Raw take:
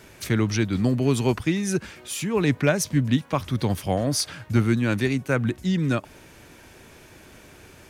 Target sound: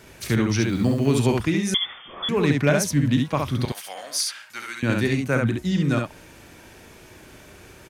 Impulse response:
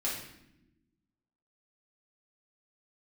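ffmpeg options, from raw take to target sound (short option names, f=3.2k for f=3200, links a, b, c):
-filter_complex "[0:a]asettb=1/sr,asplit=3[a][b][c];[a]atrim=end=0.614[d];[b]atrim=start=0.61:end=1.11,asetpts=PTS-STARTPTS,afade=t=in:d=0.004:c=qsin,afade=t=out:st=0.496:d=0.004:c=qsin,acrusher=bits=7:mix=0:aa=0.5[e];[c]atrim=start=1.106[f];[d][e]acrossfade=d=0.004:c1=hsin:c2=qsin[g];[g][f]acrossfade=d=0.004:c1=qsin:c2=hsin,asettb=1/sr,asplit=3[h][i][j];[h]atrim=end=3.654[k];[i]atrim=start=3.65:end=4.83,asetpts=PTS-STARTPTS,afade=t=in:d=0.004:c=qsin,afade=t=out:st=1.176:d=0.004:c=qsin,highpass=1.3k[l];[j]atrim=start=4.826[m];[k][l]acrossfade=d=0.004:c1=hsin:c2=qsin[n];[n][m]acrossfade=d=0.004:c1=qsin:c2=hsin,aecho=1:1:35|68:0.251|0.668,asettb=1/sr,asplit=3[o][p][q];[o]atrim=end=1.744[r];[p]atrim=start=1.74:end=2.29,asetpts=PTS-STARTPTS,afade=t=in:d=0.004:c=qsin,afade=t=out:st=0.546:d=0.004:c=qsin,lowpass=f=3.1k:t=q:w=0.5098,lowpass=f=3.1k:t=q:w=0.6013,lowpass=f=3.1k:t=q:w=0.9,lowpass=f=3.1k:t=q:w=2.563,afreqshift=-3600[s];[q]atrim=start=2.286[t];[r][s]acrossfade=d=0.004:c1=hsin:c2=qsin[u];[u][t]acrossfade=d=0.004:c1=qsin:c2=hsin"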